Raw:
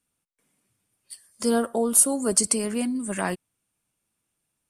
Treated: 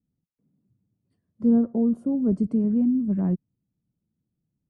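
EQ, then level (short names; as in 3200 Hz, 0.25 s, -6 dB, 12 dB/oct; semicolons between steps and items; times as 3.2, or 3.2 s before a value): band-pass 180 Hz, Q 1.3; tilt -4 dB/oct; 0.0 dB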